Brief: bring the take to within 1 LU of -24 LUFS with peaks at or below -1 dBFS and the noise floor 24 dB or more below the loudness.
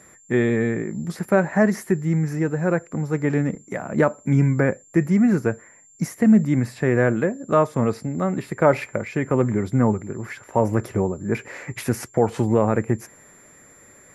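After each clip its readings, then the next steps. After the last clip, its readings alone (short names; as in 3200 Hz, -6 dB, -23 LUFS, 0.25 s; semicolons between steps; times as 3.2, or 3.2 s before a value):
steady tone 7300 Hz; tone level -50 dBFS; loudness -22.0 LUFS; peak -3.0 dBFS; loudness target -24.0 LUFS
-> notch 7300 Hz, Q 30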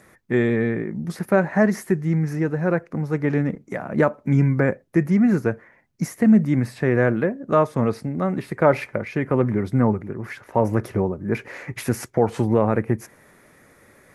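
steady tone none; loudness -22.0 LUFS; peak -3.0 dBFS; loudness target -24.0 LUFS
-> gain -2 dB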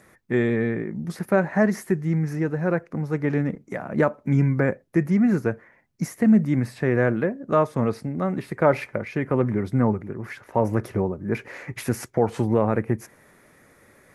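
loudness -24.0 LUFS; peak -5.0 dBFS; noise floor -58 dBFS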